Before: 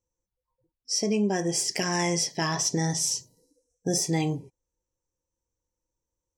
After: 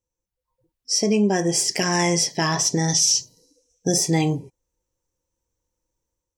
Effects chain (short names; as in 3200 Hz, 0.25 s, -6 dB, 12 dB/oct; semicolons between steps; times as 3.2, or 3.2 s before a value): 2.88–3.92 band shelf 3900 Hz +9.5 dB; AGC gain up to 7 dB; maximiser +7 dB; gain -8 dB